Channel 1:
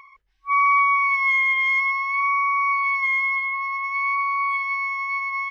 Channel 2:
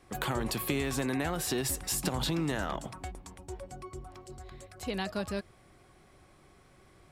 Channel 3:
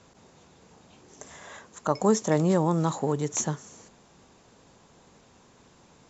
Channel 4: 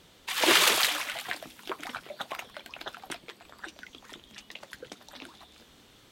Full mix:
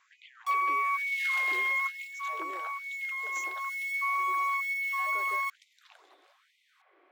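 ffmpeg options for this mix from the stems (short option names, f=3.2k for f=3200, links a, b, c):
-filter_complex "[0:a]highpass=78,acrusher=bits=5:mix=0:aa=0.000001,volume=2dB[a];[1:a]lowpass=f=2.8k:w=0.5412,lowpass=f=2.8k:w=1.3066,alimiter=level_in=5dB:limit=-24dB:level=0:latency=1,volume=-5dB,volume=-0.5dB[b];[2:a]lowshelf=f=220:g=11.5,volume=-12.5dB,asplit=2[c][d];[3:a]adelay=700,volume=-8dB[e];[d]apad=whole_len=242704[f];[a][f]sidechaincompress=threshold=-44dB:ratio=8:attack=43:release=441[g];[b][c]amix=inputs=2:normalize=0,lowshelf=f=180:g=-11.5,acompressor=threshold=-41dB:ratio=4,volume=0dB[h];[g][e]amix=inputs=2:normalize=0,highshelf=f=3.5k:g=-9.5,acompressor=threshold=-27dB:ratio=5,volume=0dB[i];[h][i]amix=inputs=2:normalize=0,afftfilt=real='re*gte(b*sr/1024,260*pow(2000/260,0.5+0.5*sin(2*PI*1.1*pts/sr)))':imag='im*gte(b*sr/1024,260*pow(2000/260,0.5+0.5*sin(2*PI*1.1*pts/sr)))':win_size=1024:overlap=0.75"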